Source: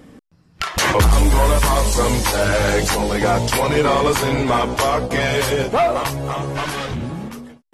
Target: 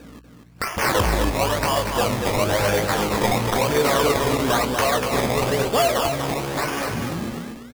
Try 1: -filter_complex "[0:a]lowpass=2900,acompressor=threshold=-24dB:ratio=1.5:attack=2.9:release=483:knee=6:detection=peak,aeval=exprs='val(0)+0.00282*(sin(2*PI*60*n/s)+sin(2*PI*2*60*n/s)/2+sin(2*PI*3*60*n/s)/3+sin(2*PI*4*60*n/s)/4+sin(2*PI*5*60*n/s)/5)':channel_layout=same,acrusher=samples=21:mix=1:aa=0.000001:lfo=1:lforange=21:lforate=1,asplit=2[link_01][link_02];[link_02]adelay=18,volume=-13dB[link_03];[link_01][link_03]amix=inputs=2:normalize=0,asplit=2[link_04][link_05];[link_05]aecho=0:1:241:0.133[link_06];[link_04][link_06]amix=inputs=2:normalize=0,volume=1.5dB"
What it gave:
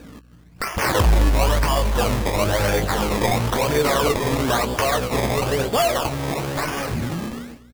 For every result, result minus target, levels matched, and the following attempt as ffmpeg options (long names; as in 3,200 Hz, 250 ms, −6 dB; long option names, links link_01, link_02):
echo-to-direct −11.5 dB; 125 Hz band +3.0 dB
-filter_complex "[0:a]lowpass=2900,acompressor=threshold=-24dB:ratio=1.5:attack=2.9:release=483:knee=6:detection=peak,aeval=exprs='val(0)+0.00282*(sin(2*PI*60*n/s)+sin(2*PI*2*60*n/s)/2+sin(2*PI*3*60*n/s)/3+sin(2*PI*4*60*n/s)/4+sin(2*PI*5*60*n/s)/5)':channel_layout=same,acrusher=samples=21:mix=1:aa=0.000001:lfo=1:lforange=21:lforate=1,asplit=2[link_01][link_02];[link_02]adelay=18,volume=-13dB[link_03];[link_01][link_03]amix=inputs=2:normalize=0,asplit=2[link_04][link_05];[link_05]aecho=0:1:241:0.501[link_06];[link_04][link_06]amix=inputs=2:normalize=0,volume=1.5dB"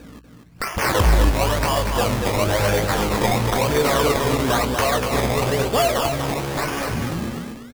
125 Hz band +3.0 dB
-filter_complex "[0:a]lowpass=2900,acompressor=threshold=-24dB:ratio=1.5:attack=2.9:release=483:knee=6:detection=peak,highpass=frequency=130:poles=1,aeval=exprs='val(0)+0.00282*(sin(2*PI*60*n/s)+sin(2*PI*2*60*n/s)/2+sin(2*PI*3*60*n/s)/3+sin(2*PI*4*60*n/s)/4+sin(2*PI*5*60*n/s)/5)':channel_layout=same,acrusher=samples=21:mix=1:aa=0.000001:lfo=1:lforange=21:lforate=1,asplit=2[link_01][link_02];[link_02]adelay=18,volume=-13dB[link_03];[link_01][link_03]amix=inputs=2:normalize=0,asplit=2[link_04][link_05];[link_05]aecho=0:1:241:0.501[link_06];[link_04][link_06]amix=inputs=2:normalize=0,volume=1.5dB"